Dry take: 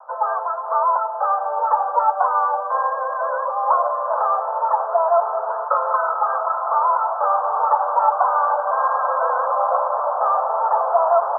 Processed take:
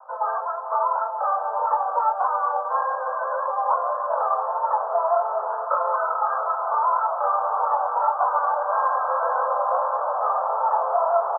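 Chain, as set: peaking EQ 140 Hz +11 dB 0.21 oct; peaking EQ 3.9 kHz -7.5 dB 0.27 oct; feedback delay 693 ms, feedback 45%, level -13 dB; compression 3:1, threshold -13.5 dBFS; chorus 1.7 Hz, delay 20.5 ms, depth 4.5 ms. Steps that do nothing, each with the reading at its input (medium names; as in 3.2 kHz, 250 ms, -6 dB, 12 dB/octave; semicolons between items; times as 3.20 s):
peaking EQ 140 Hz: input has nothing below 430 Hz; peaking EQ 3.9 kHz: input has nothing above 1.7 kHz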